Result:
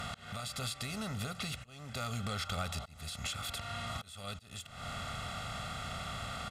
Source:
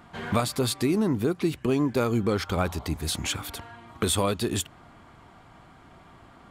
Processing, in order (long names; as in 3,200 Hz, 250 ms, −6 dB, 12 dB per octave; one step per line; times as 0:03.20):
compressor on every frequency bin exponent 0.6
guitar amp tone stack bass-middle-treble 5-5-5
downward compressor 6 to 1, threshold −45 dBFS, peak gain reduction 16.5 dB
volume swells 407 ms
high-shelf EQ 7,000 Hz −11 dB
notch filter 470 Hz, Q 14
comb filter 1.5 ms, depth 95%
level +9 dB